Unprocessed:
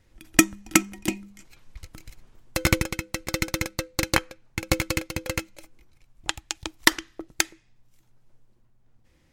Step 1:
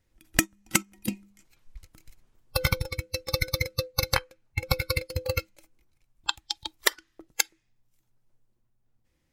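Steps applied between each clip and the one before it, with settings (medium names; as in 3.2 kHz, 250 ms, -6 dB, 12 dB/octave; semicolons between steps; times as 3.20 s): spectral noise reduction 17 dB; treble shelf 9 kHz +7.5 dB; compression 5:1, threshold -27 dBFS, peak gain reduction 16.5 dB; trim +6 dB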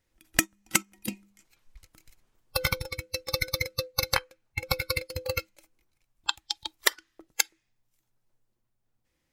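bass shelf 300 Hz -7 dB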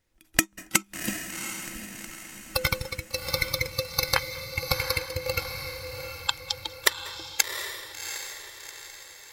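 echo that smears into a reverb 741 ms, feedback 46%, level -7 dB; on a send at -20.5 dB: reverberation RT60 0.30 s, pre-delay 184 ms; on the sum: trim +1.5 dB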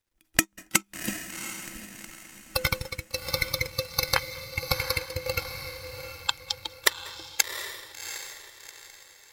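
companding laws mixed up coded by A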